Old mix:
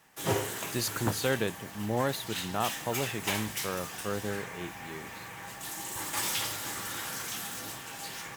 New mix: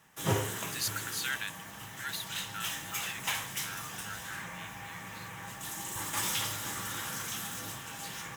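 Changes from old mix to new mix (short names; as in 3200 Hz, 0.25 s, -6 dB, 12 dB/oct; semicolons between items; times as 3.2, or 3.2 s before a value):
speech: add brick-wall FIR high-pass 1300 Hz; background: send +7.0 dB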